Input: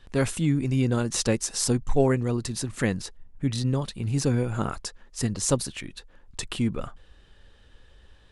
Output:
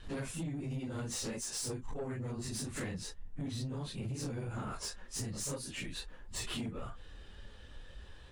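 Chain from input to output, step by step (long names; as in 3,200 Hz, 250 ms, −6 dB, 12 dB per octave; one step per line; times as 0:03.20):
random phases in long frames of 100 ms
downward compressor 8 to 1, threshold −36 dBFS, peak gain reduction 21 dB
soft clipping −35.5 dBFS, distortion −14 dB
level +2.5 dB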